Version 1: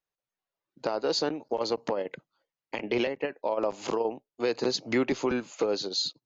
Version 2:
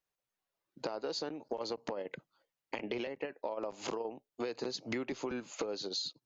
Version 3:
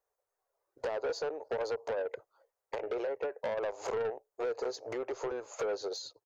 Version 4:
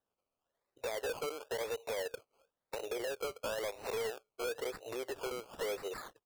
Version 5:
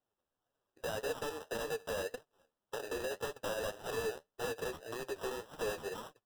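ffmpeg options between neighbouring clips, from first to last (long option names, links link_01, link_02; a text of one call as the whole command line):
ffmpeg -i in.wav -af "acompressor=threshold=-36dB:ratio=6,volume=1dB" out.wav
ffmpeg -i in.wav -af "firequalizer=gain_entry='entry(100,0);entry(170,-27);entry(430,12);entry(2900,-10);entry(6400,0)':delay=0.05:min_phase=1,asoftclip=type=tanh:threshold=-29.5dB" out.wav
ffmpeg -i in.wav -af "acrusher=samples=19:mix=1:aa=0.000001:lfo=1:lforange=11.4:lforate=0.98,volume=-3.5dB" out.wav
ffmpeg -i in.wav -af "acrusher=samples=20:mix=1:aa=0.000001,flanger=delay=6.3:depth=7.3:regen=35:speed=1.8:shape=triangular,volume=3.5dB" out.wav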